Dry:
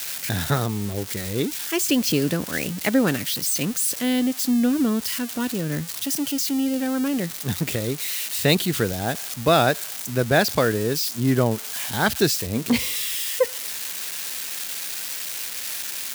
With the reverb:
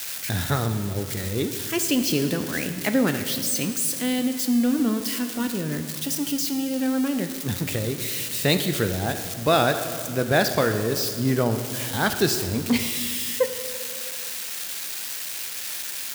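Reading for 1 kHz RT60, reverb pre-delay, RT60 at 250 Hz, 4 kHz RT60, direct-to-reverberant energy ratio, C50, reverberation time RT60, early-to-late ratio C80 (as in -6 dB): 2.0 s, 7 ms, 2.6 s, 1.9 s, 7.0 dB, 8.5 dB, 2.1 s, 10.0 dB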